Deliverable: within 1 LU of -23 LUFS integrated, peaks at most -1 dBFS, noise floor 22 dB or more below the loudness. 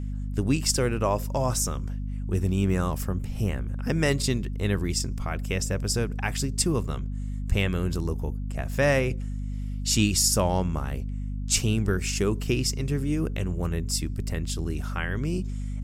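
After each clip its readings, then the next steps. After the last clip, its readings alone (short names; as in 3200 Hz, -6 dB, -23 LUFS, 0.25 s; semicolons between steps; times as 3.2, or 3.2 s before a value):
hum 50 Hz; harmonics up to 250 Hz; hum level -28 dBFS; loudness -27.0 LUFS; peak -8.0 dBFS; loudness target -23.0 LUFS
-> de-hum 50 Hz, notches 5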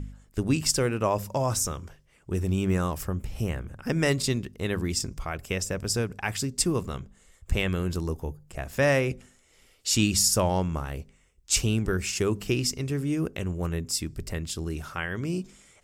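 hum none; loudness -27.5 LUFS; peak -9.5 dBFS; loudness target -23.0 LUFS
-> gain +4.5 dB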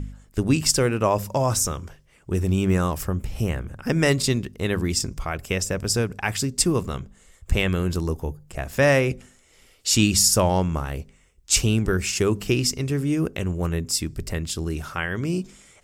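loudness -23.0 LUFS; peak -5.0 dBFS; noise floor -57 dBFS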